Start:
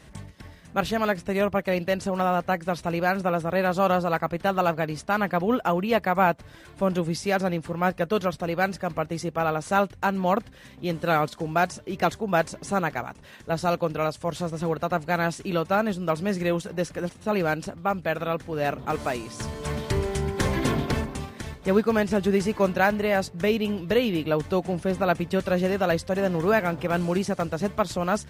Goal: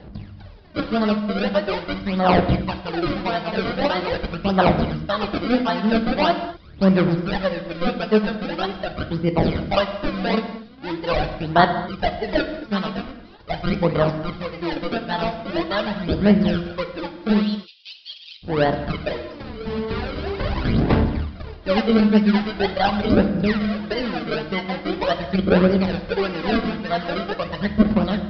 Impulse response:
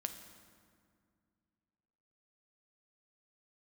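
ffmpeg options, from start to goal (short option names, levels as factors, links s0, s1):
-filter_complex "[0:a]acrossover=split=3400[s0][s1];[s0]acrusher=samples=34:mix=1:aa=0.000001:lfo=1:lforange=34:lforate=1.7[s2];[s1]acompressor=threshold=0.00251:ratio=6[s3];[s2][s3]amix=inputs=2:normalize=0,asplit=3[s4][s5][s6];[s4]afade=t=out:st=17.41:d=0.02[s7];[s5]asuperpass=centerf=4300:order=12:qfactor=1,afade=t=in:st=17.41:d=0.02,afade=t=out:st=18.42:d=0.02[s8];[s6]afade=t=in:st=18.42:d=0.02[s9];[s7][s8][s9]amix=inputs=3:normalize=0,aphaser=in_gain=1:out_gain=1:delay=4.6:decay=0.71:speed=0.43:type=sinusoidal,aresample=11025,aresample=44100[s10];[1:a]atrim=start_sample=2205,afade=t=out:st=0.3:d=0.01,atrim=end_sample=13671[s11];[s10][s11]afir=irnorm=-1:irlink=0"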